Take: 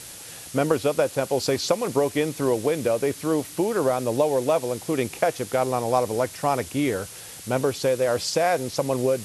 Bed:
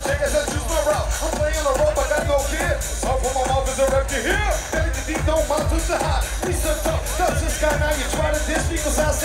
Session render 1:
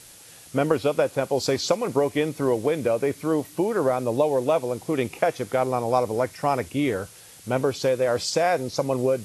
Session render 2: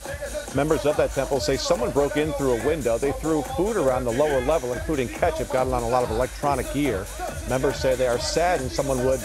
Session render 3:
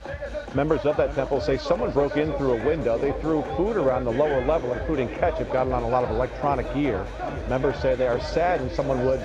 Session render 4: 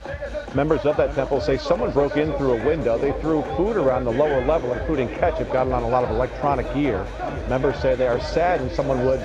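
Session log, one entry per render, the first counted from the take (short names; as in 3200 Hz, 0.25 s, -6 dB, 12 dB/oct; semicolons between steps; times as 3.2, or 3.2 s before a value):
noise print and reduce 7 dB
add bed -11 dB
air absorption 240 m; swung echo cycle 0.809 s, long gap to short 1.5:1, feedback 54%, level -14.5 dB
gain +2.5 dB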